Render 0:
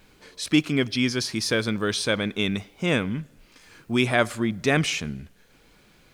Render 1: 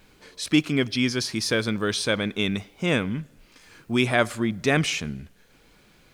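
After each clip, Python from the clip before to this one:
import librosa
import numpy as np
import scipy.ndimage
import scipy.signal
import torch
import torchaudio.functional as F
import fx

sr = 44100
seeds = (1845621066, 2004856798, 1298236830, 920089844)

y = x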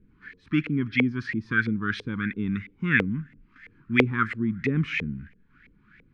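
y = scipy.signal.sosfilt(scipy.signal.cheby1(2, 1.0, [240.0, 1800.0], 'bandstop', fs=sr, output='sos'), x)
y = fx.filter_lfo_lowpass(y, sr, shape='saw_up', hz=3.0, low_hz=450.0, high_hz=2200.0, q=6.0)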